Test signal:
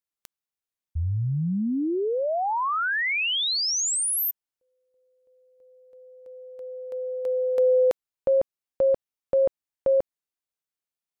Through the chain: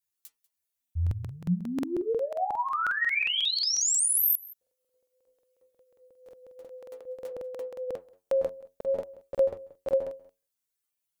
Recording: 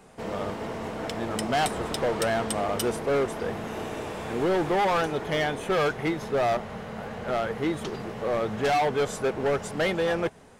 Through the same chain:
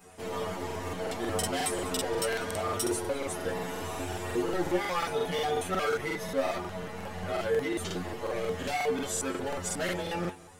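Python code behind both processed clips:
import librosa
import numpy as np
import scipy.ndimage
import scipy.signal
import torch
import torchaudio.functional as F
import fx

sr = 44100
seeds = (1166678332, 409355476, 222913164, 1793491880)

p1 = fx.high_shelf(x, sr, hz=6000.0, db=10.5)
p2 = fx.over_compress(p1, sr, threshold_db=-28.0, ratio=-1.0)
p3 = p1 + (p2 * 10.0 ** (-1.5 / 20.0))
p4 = np.clip(p3, -10.0 ** (-9.0 / 20.0), 10.0 ** (-9.0 / 20.0))
p5 = fx.stiff_resonator(p4, sr, f0_hz=88.0, decay_s=0.32, stiffness=0.002)
p6 = fx.chorus_voices(p5, sr, voices=2, hz=0.69, base_ms=12, depth_ms=3.6, mix_pct=40)
p7 = p6 + fx.echo_single(p6, sr, ms=192, db=-21.5, dry=0)
p8 = fx.buffer_crackle(p7, sr, first_s=0.66, period_s=0.18, block=2048, kind='repeat')
y = p8 * 10.0 ** (3.5 / 20.0)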